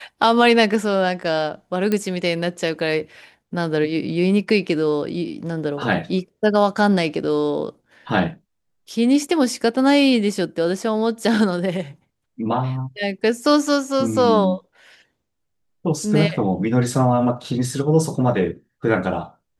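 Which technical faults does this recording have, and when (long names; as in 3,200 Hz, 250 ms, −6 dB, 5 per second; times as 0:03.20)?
0:01.92: click −9 dBFS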